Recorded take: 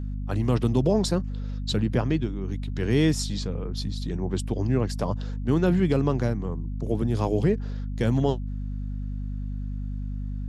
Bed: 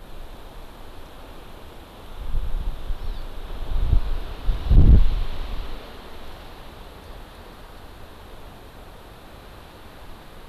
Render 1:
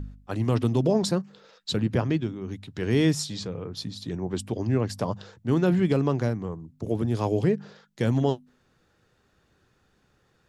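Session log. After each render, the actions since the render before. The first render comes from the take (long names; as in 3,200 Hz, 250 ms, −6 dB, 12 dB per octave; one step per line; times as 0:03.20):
hum removal 50 Hz, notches 5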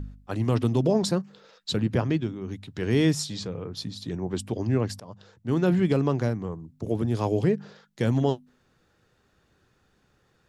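0:05.00–0:05.68: fade in, from −22 dB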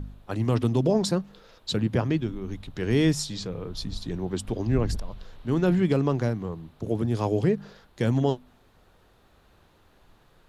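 mix in bed −18 dB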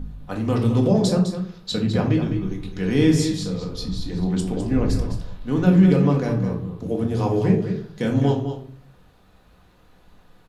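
single-tap delay 207 ms −9.5 dB
rectangular room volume 430 cubic metres, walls furnished, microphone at 1.9 metres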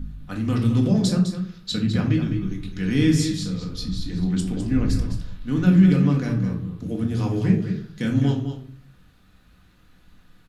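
flat-topped bell 630 Hz −9 dB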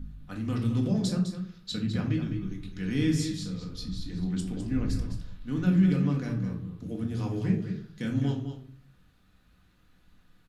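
level −7.5 dB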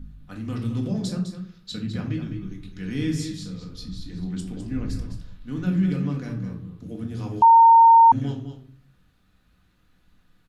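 0:07.42–0:08.12: beep over 916 Hz −8.5 dBFS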